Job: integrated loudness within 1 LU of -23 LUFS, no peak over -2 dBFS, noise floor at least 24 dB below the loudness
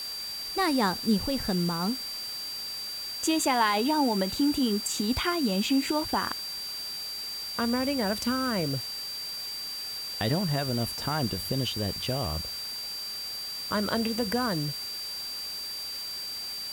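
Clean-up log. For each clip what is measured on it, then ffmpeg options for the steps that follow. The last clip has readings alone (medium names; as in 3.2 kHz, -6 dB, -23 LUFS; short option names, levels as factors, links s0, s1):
steady tone 4.7 kHz; tone level -34 dBFS; noise floor -36 dBFS; noise floor target -53 dBFS; loudness -29.0 LUFS; peak level -12.5 dBFS; loudness target -23.0 LUFS
-> -af "bandreject=f=4700:w=30"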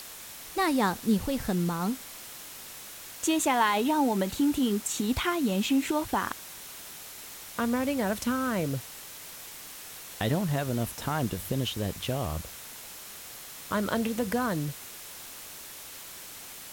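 steady tone not found; noise floor -44 dBFS; noise floor target -53 dBFS
-> -af "afftdn=nr=9:nf=-44"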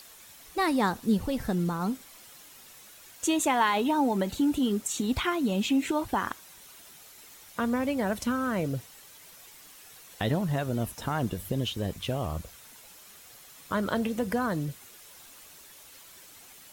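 noise floor -51 dBFS; noise floor target -53 dBFS
-> -af "afftdn=nr=6:nf=-51"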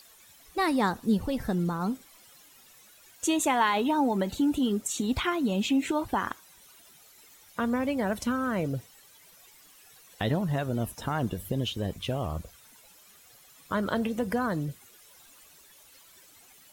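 noise floor -56 dBFS; loudness -29.0 LUFS; peak level -12.5 dBFS; loudness target -23.0 LUFS
-> -af "volume=2"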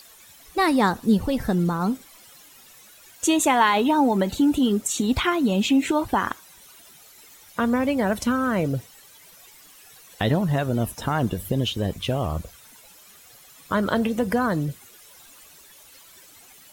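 loudness -23.0 LUFS; peak level -6.5 dBFS; noise floor -50 dBFS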